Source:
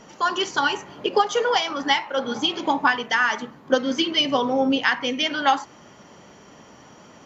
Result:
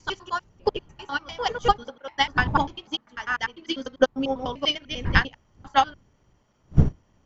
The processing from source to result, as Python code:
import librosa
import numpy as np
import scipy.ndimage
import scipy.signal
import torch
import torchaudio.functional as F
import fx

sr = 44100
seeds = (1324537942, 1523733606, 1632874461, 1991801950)

y = fx.block_reorder(x, sr, ms=99.0, group=6)
y = fx.dmg_wind(y, sr, seeds[0], corner_hz=130.0, level_db=-29.0)
y = fx.upward_expand(y, sr, threshold_db=-29.0, expansion=2.5)
y = y * 10.0 ** (3.5 / 20.0)